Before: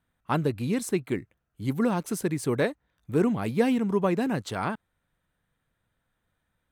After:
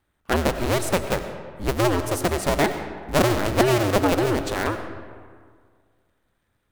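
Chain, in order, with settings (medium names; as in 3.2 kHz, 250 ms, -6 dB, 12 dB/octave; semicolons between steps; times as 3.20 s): cycle switcher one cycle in 2, inverted; algorithmic reverb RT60 1.9 s, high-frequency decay 0.55×, pre-delay 55 ms, DRR 8.5 dB; trim +4 dB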